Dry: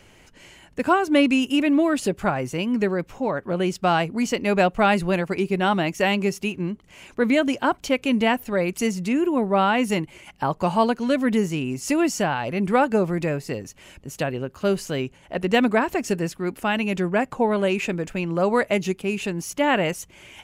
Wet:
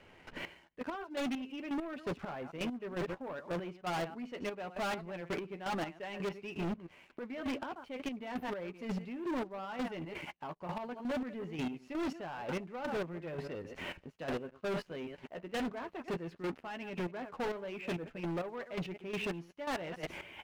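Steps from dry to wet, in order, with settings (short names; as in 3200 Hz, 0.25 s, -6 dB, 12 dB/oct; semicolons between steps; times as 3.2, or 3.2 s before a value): reverse delay 0.109 s, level -12.5 dB; transient shaper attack +3 dB, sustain -2 dB; low shelf 230 Hz -11 dB; doubler 12 ms -9 dB; reverse; compressor 10:1, threshold -34 dBFS, peak gain reduction 22 dB; reverse; air absorption 390 m; sample leveller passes 2; step gate "...xx....x" 167 bpm -12 dB; hard clip -36 dBFS, distortion -9 dB; gain +3 dB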